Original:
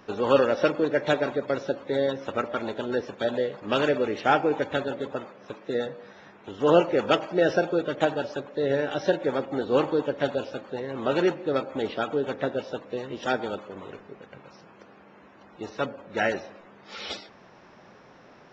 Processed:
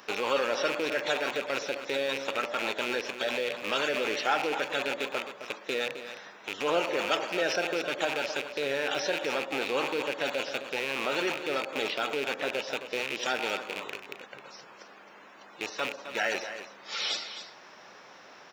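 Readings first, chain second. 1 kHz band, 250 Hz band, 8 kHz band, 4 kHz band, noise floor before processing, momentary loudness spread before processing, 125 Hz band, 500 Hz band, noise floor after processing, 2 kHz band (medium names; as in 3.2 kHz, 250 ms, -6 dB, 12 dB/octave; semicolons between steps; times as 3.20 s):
-3.5 dB, -9.5 dB, no reading, +4.5 dB, -52 dBFS, 16 LU, -14.5 dB, -6.5 dB, -52 dBFS, +2.0 dB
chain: rattle on loud lows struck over -40 dBFS, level -26 dBFS; high-pass 880 Hz 6 dB/octave; treble shelf 4.6 kHz +9 dB; in parallel at -1 dB: compressor with a negative ratio -34 dBFS; on the sum: saturation -10 dBFS, distortion -28 dB; on a send: delay 263 ms -11 dB; on the sum: trim -3.5 dB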